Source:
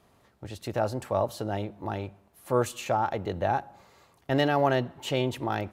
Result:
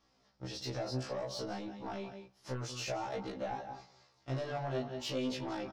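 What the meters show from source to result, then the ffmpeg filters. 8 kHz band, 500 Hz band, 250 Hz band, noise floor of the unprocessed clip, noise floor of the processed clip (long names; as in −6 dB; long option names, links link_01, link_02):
−4.5 dB, −11.0 dB, −8.5 dB, −64 dBFS, −72 dBFS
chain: -filter_complex "[0:a]acrossover=split=740[link_01][link_02];[link_02]alimiter=level_in=3dB:limit=-24dB:level=0:latency=1:release=62,volume=-3dB[link_03];[link_01][link_03]amix=inputs=2:normalize=0,agate=range=-8dB:threshold=-53dB:ratio=16:detection=peak,lowpass=frequency=5300:width_type=q:width=5.6,flanger=delay=19:depth=5.2:speed=0.59,asplit=2[link_04][link_05];[link_05]aecho=0:1:180:0.2[link_06];[link_04][link_06]amix=inputs=2:normalize=0,acompressor=threshold=-35dB:ratio=2.5,asoftclip=type=tanh:threshold=-32dB,afftfilt=real='re*1.73*eq(mod(b,3),0)':imag='im*1.73*eq(mod(b,3),0)':win_size=2048:overlap=0.75,volume=3dB"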